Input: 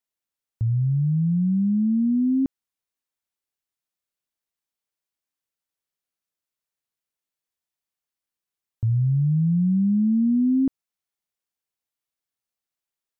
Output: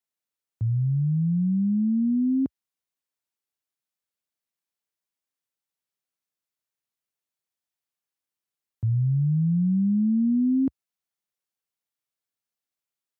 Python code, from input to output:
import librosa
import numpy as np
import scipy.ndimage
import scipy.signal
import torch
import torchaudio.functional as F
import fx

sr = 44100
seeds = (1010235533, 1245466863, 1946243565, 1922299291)

y = scipy.signal.sosfilt(scipy.signal.butter(4, 69.0, 'highpass', fs=sr, output='sos'), x)
y = F.gain(torch.from_numpy(y), -2.0).numpy()